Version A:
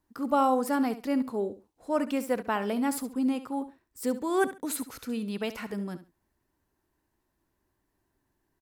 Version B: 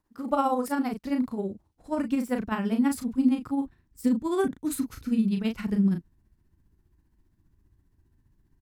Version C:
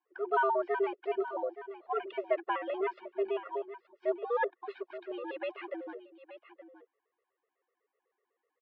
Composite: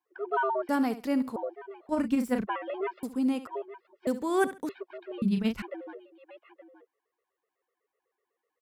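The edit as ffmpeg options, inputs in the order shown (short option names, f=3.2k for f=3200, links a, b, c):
-filter_complex "[0:a]asplit=3[a][b][c];[1:a]asplit=2[d][e];[2:a]asplit=6[f][g][h][i][j][k];[f]atrim=end=0.692[l];[a]atrim=start=0.688:end=1.362[m];[g]atrim=start=1.358:end=1.892[n];[d]atrim=start=1.888:end=2.472[o];[h]atrim=start=2.468:end=3.032[p];[b]atrim=start=3.028:end=3.472[q];[i]atrim=start=3.468:end=4.072[r];[c]atrim=start=4.068:end=4.692[s];[j]atrim=start=4.688:end=5.222[t];[e]atrim=start=5.218:end=5.622[u];[k]atrim=start=5.618[v];[l][m]acrossfade=d=0.004:c1=hsin:c2=hsin[w];[w][n]acrossfade=d=0.004:c1=hsin:c2=hsin[x];[x][o]acrossfade=d=0.004:c1=hsin:c2=hsin[y];[y][p]acrossfade=d=0.004:c1=hsin:c2=hsin[z];[z][q]acrossfade=d=0.004:c1=hsin:c2=hsin[aa];[aa][r]acrossfade=d=0.004:c1=hsin:c2=hsin[ab];[ab][s]acrossfade=d=0.004:c1=hsin:c2=hsin[ac];[ac][t]acrossfade=d=0.004:c1=hsin:c2=hsin[ad];[ad][u]acrossfade=d=0.004:c1=hsin:c2=hsin[ae];[ae][v]acrossfade=d=0.004:c1=hsin:c2=hsin"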